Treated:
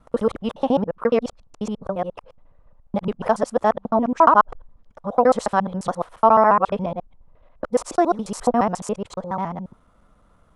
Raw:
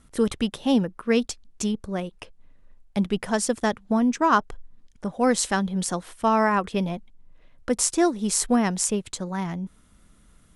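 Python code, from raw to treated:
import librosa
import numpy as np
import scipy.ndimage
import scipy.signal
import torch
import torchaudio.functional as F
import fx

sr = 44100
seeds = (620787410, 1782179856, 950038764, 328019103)

y = fx.local_reverse(x, sr, ms=70.0)
y = fx.lowpass(y, sr, hz=2100.0, slope=6)
y = fx.band_shelf(y, sr, hz=800.0, db=10.5, octaves=1.7)
y = y * librosa.db_to_amplitude(-1.5)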